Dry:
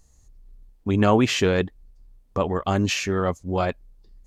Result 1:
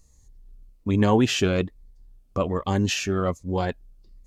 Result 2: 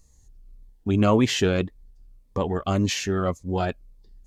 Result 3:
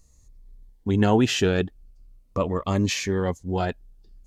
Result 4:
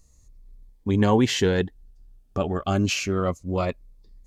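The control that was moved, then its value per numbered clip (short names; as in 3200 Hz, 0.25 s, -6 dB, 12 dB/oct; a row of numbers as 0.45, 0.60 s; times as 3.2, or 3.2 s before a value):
cascading phaser, rate: 1.2, 1.8, 0.41, 0.28 Hz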